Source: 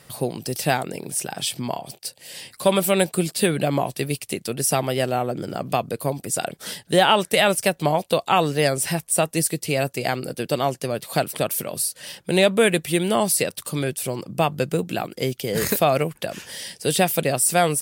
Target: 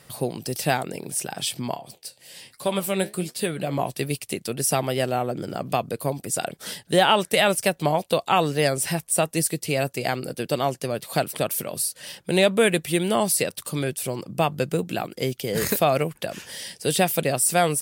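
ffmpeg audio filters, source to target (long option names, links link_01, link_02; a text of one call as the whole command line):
ffmpeg -i in.wav -filter_complex "[0:a]asettb=1/sr,asplit=3[link_01][link_02][link_03];[link_01]atrim=end=1.764[link_04];[link_02]atrim=start=1.76:end=3.79,asetpts=PTS-STARTPTS,afade=type=in:duration=0.004:curve=qsin,afade=type=out:start_time=2.026:duration=0.004:curve=qsin,flanger=delay=6.9:depth=8.7:regen=66:speed=1.2:shape=sinusoidal[link_05];[link_03]atrim=start=3.786[link_06];[link_04][link_05]acrossfade=duration=0.004:curve1=hsin:curve2=qsin[link_07];[link_07][link_06]acrossfade=duration=0.004:curve1=qsin:curve2=hsin,volume=-1.5dB" out.wav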